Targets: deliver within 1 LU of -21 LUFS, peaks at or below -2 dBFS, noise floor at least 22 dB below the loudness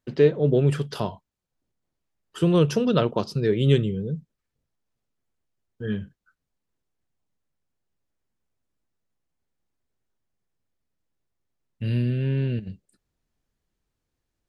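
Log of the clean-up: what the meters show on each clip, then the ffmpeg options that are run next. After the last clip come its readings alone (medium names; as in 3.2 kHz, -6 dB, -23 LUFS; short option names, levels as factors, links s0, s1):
loudness -24.0 LUFS; peak level -6.0 dBFS; loudness target -21.0 LUFS
-> -af "volume=1.41"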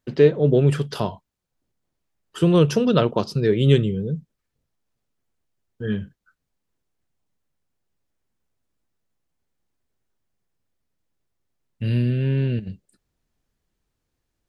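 loudness -21.0 LUFS; peak level -3.0 dBFS; noise floor -79 dBFS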